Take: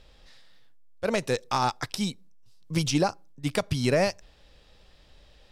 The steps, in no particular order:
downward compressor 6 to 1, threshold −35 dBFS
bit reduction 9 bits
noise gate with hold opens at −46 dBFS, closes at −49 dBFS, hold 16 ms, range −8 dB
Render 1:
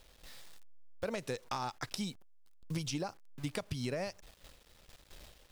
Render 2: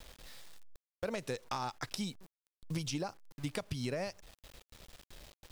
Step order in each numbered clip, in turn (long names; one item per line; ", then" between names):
bit reduction, then noise gate with hold, then downward compressor
noise gate with hold, then bit reduction, then downward compressor